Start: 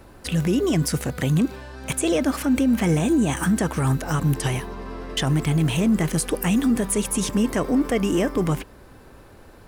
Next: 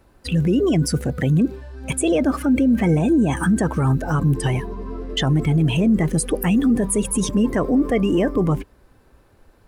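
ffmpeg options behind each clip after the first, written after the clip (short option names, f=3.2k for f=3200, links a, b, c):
-filter_complex "[0:a]afftdn=nr=15:nf=-28,asplit=2[a][b];[b]alimiter=limit=-22.5dB:level=0:latency=1:release=11,volume=0dB[c];[a][c]amix=inputs=2:normalize=0"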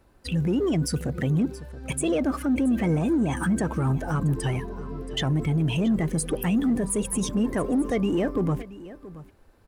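-filter_complex "[0:a]asplit=2[a][b];[b]asoftclip=type=hard:threshold=-21dB,volume=-8.5dB[c];[a][c]amix=inputs=2:normalize=0,aecho=1:1:676:0.141,volume=-7.5dB"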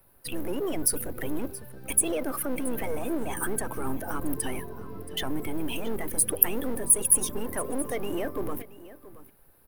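-filter_complex "[0:a]acrossover=split=290|3800[a][b][c];[a]aeval=exprs='abs(val(0))':c=same[d];[d][b][c]amix=inputs=3:normalize=0,aexciter=amount=13.7:drive=2.5:freq=10k,volume=-3dB"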